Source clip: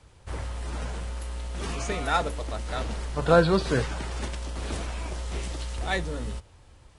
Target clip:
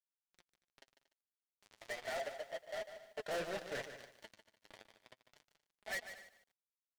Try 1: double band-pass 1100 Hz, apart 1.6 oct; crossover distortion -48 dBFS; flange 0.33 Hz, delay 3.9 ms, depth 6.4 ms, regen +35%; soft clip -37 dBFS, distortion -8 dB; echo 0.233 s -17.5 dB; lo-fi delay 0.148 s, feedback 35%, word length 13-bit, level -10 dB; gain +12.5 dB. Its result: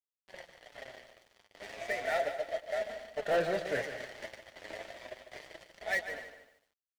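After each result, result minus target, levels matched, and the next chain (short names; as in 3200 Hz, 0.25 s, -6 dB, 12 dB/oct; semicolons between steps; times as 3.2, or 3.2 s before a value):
soft clip: distortion -7 dB; crossover distortion: distortion -5 dB
double band-pass 1100 Hz, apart 1.6 oct; crossover distortion -48 dBFS; flange 0.33 Hz, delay 3.9 ms, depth 6.4 ms, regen +35%; soft clip -49 dBFS, distortion -2 dB; echo 0.233 s -17.5 dB; lo-fi delay 0.148 s, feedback 35%, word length 13-bit, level -10 dB; gain +12.5 dB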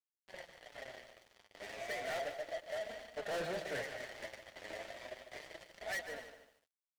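crossover distortion: distortion -5 dB
double band-pass 1100 Hz, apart 1.6 oct; crossover distortion -39.5 dBFS; flange 0.33 Hz, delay 3.9 ms, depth 6.4 ms, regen +35%; soft clip -49 dBFS, distortion -2 dB; echo 0.233 s -17.5 dB; lo-fi delay 0.148 s, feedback 35%, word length 13-bit, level -10 dB; gain +12.5 dB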